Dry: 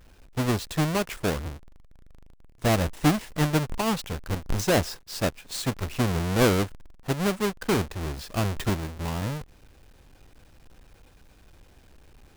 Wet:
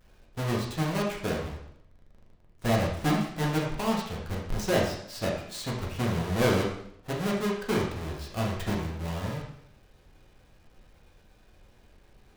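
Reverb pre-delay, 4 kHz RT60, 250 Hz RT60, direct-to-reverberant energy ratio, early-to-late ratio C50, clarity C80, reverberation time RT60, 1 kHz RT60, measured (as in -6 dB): 4 ms, 0.70 s, 0.75 s, -3.0 dB, 4.0 dB, 7.0 dB, 0.70 s, 0.70 s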